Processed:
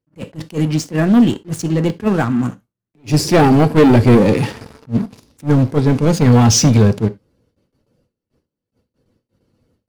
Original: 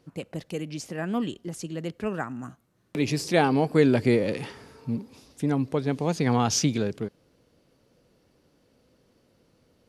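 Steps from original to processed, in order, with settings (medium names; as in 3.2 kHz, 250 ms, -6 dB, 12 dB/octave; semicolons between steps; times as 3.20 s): coarse spectral quantiser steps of 15 dB; gate with hold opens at -54 dBFS; bass shelf 320 Hz +8.5 dB; waveshaping leveller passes 3; in parallel at -5 dB: saturation -18.5 dBFS, distortion -8 dB; on the sum: gated-style reverb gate 110 ms falling, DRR 11.5 dB; attacks held to a fixed rise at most 340 dB/s; trim -1 dB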